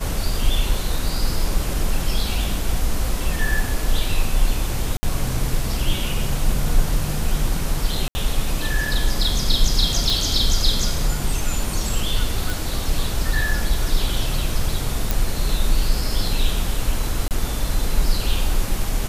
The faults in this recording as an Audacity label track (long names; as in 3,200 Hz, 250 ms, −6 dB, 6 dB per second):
4.970000	5.030000	drop-out 60 ms
8.080000	8.150000	drop-out 70 ms
10.100000	10.100000	click
12.500000	12.500000	click
15.110000	15.110000	click
17.280000	17.310000	drop-out 28 ms